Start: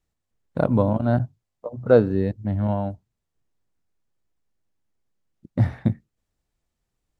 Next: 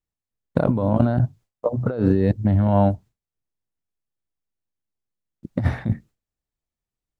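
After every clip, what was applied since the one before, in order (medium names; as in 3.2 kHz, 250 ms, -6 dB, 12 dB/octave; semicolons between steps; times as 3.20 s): compressor with a negative ratio -25 dBFS, ratio -1; gate with hold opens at -55 dBFS; trim +6 dB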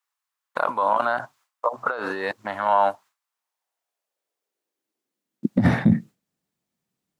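high-pass sweep 1.1 kHz -> 180 Hz, 3.17–5.76 s; peak limiter -15.5 dBFS, peak gain reduction 10 dB; trim +8 dB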